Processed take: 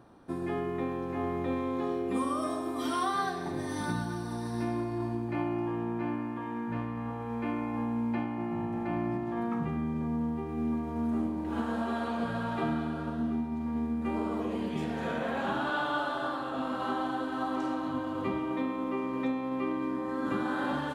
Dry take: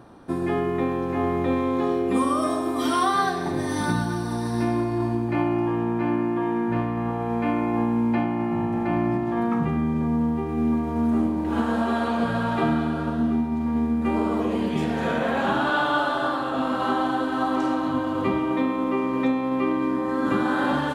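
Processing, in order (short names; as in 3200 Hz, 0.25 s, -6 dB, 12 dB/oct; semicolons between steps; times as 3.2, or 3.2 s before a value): 6.07–8.38 de-hum 175 Hz, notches 4; gain -8.5 dB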